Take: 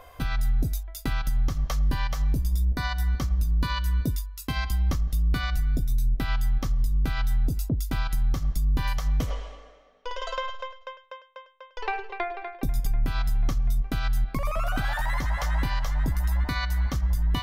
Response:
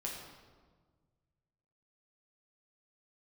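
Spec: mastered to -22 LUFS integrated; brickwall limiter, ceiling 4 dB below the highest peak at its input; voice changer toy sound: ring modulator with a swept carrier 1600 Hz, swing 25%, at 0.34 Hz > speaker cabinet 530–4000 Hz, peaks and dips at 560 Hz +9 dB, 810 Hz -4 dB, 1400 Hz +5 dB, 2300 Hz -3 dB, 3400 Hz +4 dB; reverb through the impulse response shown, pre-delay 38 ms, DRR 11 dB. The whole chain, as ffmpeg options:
-filter_complex "[0:a]alimiter=limit=-21dB:level=0:latency=1,asplit=2[a][b];[1:a]atrim=start_sample=2205,adelay=38[c];[b][c]afir=irnorm=-1:irlink=0,volume=-11.5dB[d];[a][d]amix=inputs=2:normalize=0,aeval=exprs='val(0)*sin(2*PI*1600*n/s+1600*0.25/0.34*sin(2*PI*0.34*n/s))':c=same,highpass=530,equalizer=f=560:t=q:w=4:g=9,equalizer=f=810:t=q:w=4:g=-4,equalizer=f=1.4k:t=q:w=4:g=5,equalizer=f=2.3k:t=q:w=4:g=-3,equalizer=f=3.4k:t=q:w=4:g=4,lowpass=f=4k:w=0.5412,lowpass=f=4k:w=1.3066,volume=4dB"

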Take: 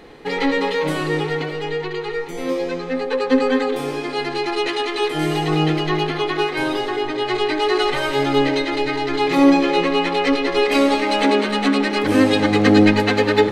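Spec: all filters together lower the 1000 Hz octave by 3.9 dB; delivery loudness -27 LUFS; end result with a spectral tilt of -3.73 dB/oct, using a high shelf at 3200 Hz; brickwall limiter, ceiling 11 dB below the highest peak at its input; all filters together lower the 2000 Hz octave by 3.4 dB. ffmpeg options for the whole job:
-af "equalizer=f=1k:t=o:g=-4.5,equalizer=f=2k:t=o:g=-4,highshelf=f=3.2k:g=3,volume=-4dB,alimiter=limit=-17.5dB:level=0:latency=1"

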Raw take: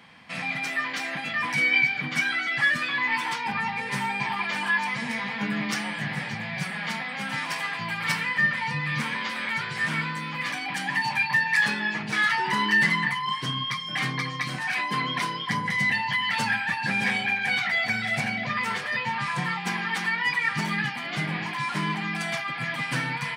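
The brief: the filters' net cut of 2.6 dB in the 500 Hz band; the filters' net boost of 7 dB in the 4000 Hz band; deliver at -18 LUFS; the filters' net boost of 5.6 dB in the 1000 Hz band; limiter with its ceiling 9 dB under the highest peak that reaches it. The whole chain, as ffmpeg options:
-af "equalizer=f=500:t=o:g=-7,equalizer=f=1k:t=o:g=7.5,equalizer=f=4k:t=o:g=9,volume=5.5dB,alimiter=limit=-9.5dB:level=0:latency=1"

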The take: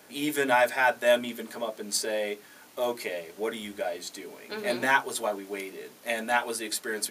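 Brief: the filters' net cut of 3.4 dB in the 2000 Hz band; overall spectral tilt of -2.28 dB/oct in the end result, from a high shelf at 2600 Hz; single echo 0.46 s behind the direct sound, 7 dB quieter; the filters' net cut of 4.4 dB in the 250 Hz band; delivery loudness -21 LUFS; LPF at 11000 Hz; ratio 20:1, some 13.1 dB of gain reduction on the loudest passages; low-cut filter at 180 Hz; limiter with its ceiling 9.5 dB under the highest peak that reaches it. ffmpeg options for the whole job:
-af "highpass=180,lowpass=11k,equalizer=f=250:t=o:g=-4.5,equalizer=f=2k:t=o:g=-8,highshelf=f=2.6k:g=7.5,acompressor=threshold=-31dB:ratio=20,alimiter=level_in=2.5dB:limit=-24dB:level=0:latency=1,volume=-2.5dB,aecho=1:1:460:0.447,volume=16.5dB"

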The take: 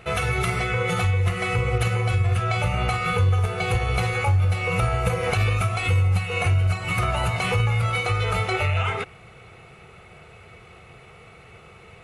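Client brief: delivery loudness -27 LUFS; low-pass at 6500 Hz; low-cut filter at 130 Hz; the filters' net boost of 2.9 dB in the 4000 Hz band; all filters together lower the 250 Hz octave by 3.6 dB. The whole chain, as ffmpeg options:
-af "highpass=130,lowpass=6.5k,equalizer=f=250:t=o:g=-5,equalizer=f=4k:t=o:g=4.5,volume=-2dB"

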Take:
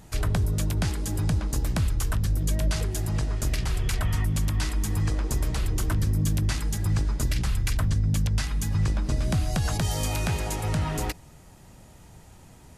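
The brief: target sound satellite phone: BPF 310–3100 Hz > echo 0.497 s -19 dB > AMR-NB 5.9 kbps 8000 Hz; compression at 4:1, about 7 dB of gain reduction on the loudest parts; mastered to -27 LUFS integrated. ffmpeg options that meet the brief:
-af "acompressor=threshold=-29dB:ratio=4,highpass=310,lowpass=3.1k,aecho=1:1:497:0.112,volume=19.5dB" -ar 8000 -c:a libopencore_amrnb -b:a 5900

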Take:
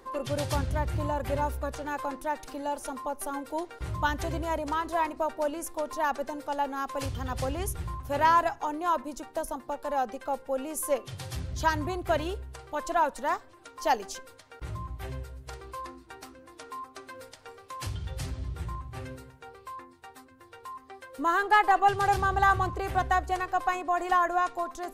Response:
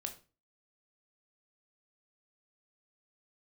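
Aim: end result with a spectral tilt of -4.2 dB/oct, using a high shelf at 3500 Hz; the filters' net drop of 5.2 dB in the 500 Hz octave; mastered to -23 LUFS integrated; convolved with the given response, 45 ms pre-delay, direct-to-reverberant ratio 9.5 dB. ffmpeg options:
-filter_complex "[0:a]equalizer=f=500:t=o:g=-7,highshelf=f=3.5k:g=-4.5,asplit=2[a][b];[1:a]atrim=start_sample=2205,adelay=45[c];[b][c]afir=irnorm=-1:irlink=0,volume=-7.5dB[d];[a][d]amix=inputs=2:normalize=0,volume=8.5dB"

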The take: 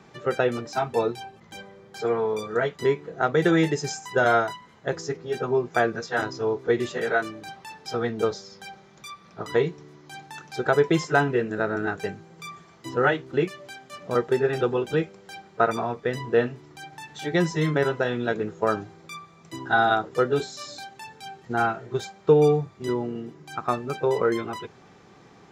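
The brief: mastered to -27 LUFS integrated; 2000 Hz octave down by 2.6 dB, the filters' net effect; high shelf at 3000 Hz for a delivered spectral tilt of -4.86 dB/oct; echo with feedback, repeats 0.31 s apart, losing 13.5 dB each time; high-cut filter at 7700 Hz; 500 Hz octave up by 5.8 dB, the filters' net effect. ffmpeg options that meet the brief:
-af "lowpass=7.7k,equalizer=f=500:t=o:g=7,equalizer=f=2k:t=o:g=-7,highshelf=f=3k:g=7.5,aecho=1:1:310|620:0.211|0.0444,volume=-6dB"

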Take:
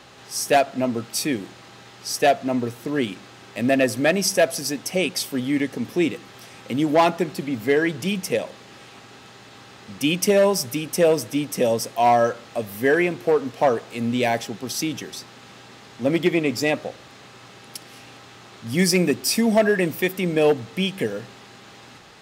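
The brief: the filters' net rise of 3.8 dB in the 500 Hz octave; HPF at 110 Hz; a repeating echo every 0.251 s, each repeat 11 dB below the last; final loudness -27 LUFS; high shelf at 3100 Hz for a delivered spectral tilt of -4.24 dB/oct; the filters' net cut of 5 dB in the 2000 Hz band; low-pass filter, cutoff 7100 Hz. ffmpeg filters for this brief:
-af "highpass=110,lowpass=7.1k,equalizer=f=500:t=o:g=5,equalizer=f=2k:t=o:g=-9,highshelf=f=3.1k:g=6.5,aecho=1:1:251|502|753:0.282|0.0789|0.0221,volume=-7.5dB"

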